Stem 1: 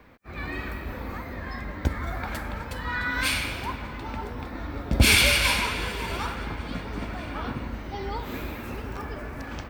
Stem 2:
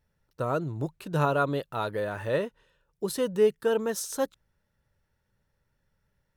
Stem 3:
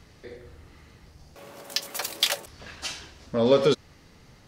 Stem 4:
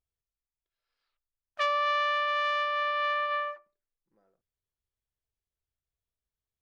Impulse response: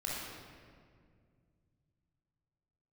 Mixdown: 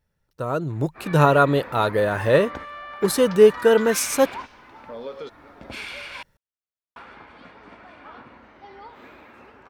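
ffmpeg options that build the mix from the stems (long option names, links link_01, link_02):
-filter_complex "[0:a]adelay=700,volume=-4dB,asplit=3[link_01][link_02][link_03];[link_01]atrim=end=6.23,asetpts=PTS-STARTPTS,afade=type=out:start_time=6.226:duration=0.004:curve=hsin[link_04];[link_02]atrim=start=6.23:end=6.96,asetpts=PTS-STARTPTS,volume=0[link_05];[link_03]atrim=start=6.96,asetpts=PTS-STARTPTS,afade=type=in:duration=0.004:curve=hsin[link_06];[link_04][link_05][link_06]concat=n=3:v=0:a=1[link_07];[1:a]volume=0dB,asplit=2[link_08][link_09];[2:a]adelay=1550,volume=-17dB[link_10];[3:a]adelay=750,volume=-15.5dB[link_11];[link_09]apad=whole_len=458345[link_12];[link_07][link_12]sidechaingate=range=-14dB:threshold=-52dB:ratio=16:detection=peak[link_13];[link_13][link_10][link_11]amix=inputs=3:normalize=0,bandpass=frequency=1100:width_type=q:width=0.56:csg=0,acompressor=threshold=-47dB:ratio=2,volume=0dB[link_14];[link_08][link_14]amix=inputs=2:normalize=0,dynaudnorm=framelen=130:gausssize=11:maxgain=11dB"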